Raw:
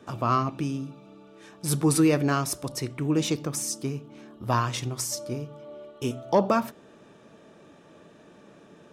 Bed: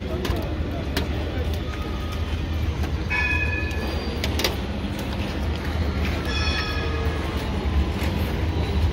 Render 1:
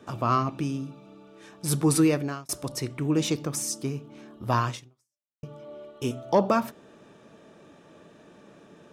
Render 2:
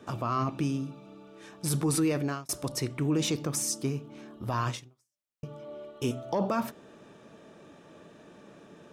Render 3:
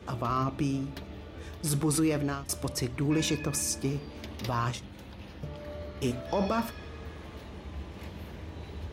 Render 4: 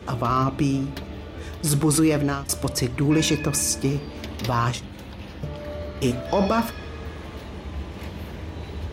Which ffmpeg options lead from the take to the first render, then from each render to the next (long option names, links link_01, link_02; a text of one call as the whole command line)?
ffmpeg -i in.wav -filter_complex "[0:a]asplit=3[link_01][link_02][link_03];[link_01]atrim=end=2.49,asetpts=PTS-STARTPTS,afade=type=out:start_time=2.03:duration=0.46[link_04];[link_02]atrim=start=2.49:end=5.43,asetpts=PTS-STARTPTS,afade=type=in:duration=0.004:curve=hsin,afade=type=out:start_time=2.21:duration=0.73:curve=exp[link_05];[link_03]atrim=start=5.43,asetpts=PTS-STARTPTS,afade=type=in:duration=0.004:curve=hsin[link_06];[link_04][link_05][link_06]concat=n=3:v=0:a=1" out.wav
ffmpeg -i in.wav -af "alimiter=limit=-19dB:level=0:latency=1:release=22" out.wav
ffmpeg -i in.wav -i bed.wav -filter_complex "[1:a]volume=-18.5dB[link_01];[0:a][link_01]amix=inputs=2:normalize=0" out.wav
ffmpeg -i in.wav -af "volume=7.5dB" out.wav